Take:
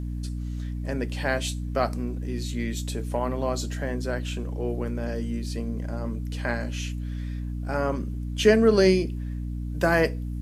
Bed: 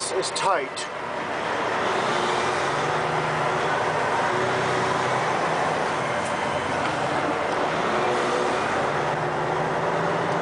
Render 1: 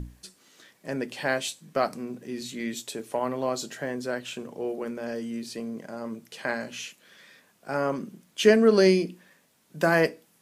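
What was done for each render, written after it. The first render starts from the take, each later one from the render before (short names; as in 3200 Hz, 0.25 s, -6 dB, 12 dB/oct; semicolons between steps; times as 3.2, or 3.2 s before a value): notches 60/120/180/240/300 Hz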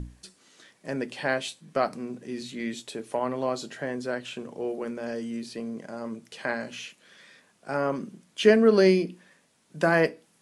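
steep low-pass 11000 Hz 72 dB/oct; dynamic EQ 7200 Hz, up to -7 dB, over -49 dBFS, Q 1.1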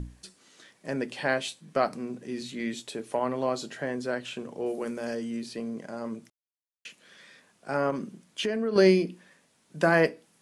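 4.66–5.15 high shelf 6700 Hz +12 dB; 6.3–6.85 mute; 7.9–8.76 compressor 5:1, threshold -26 dBFS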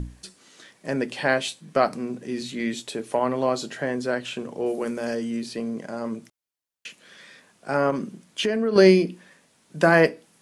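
gain +5 dB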